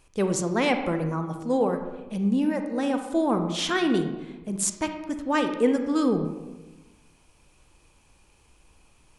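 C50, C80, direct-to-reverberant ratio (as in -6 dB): 7.5 dB, 9.5 dB, 6.0 dB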